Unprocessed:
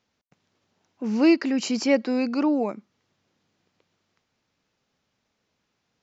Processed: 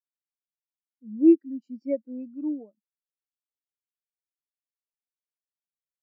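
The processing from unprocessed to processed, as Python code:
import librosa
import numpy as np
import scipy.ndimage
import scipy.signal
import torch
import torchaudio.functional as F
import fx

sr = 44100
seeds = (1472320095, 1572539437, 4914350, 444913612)

y = fx.spectral_expand(x, sr, expansion=2.5)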